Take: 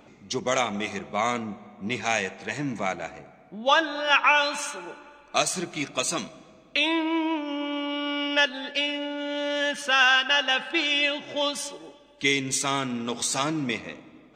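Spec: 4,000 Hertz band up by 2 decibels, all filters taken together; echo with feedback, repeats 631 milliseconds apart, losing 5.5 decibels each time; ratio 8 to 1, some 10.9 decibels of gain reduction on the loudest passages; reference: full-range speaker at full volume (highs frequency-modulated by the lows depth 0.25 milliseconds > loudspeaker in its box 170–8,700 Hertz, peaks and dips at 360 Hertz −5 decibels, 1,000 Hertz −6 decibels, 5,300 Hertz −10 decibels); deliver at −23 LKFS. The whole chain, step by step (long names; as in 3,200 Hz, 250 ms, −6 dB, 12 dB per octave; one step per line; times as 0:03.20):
parametric band 4,000 Hz +4 dB
downward compressor 8 to 1, threshold −25 dBFS
repeating echo 631 ms, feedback 53%, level −5.5 dB
highs frequency-modulated by the lows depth 0.25 ms
loudspeaker in its box 170–8,700 Hz, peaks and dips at 360 Hz −5 dB, 1,000 Hz −6 dB, 5,300 Hz −10 dB
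level +7 dB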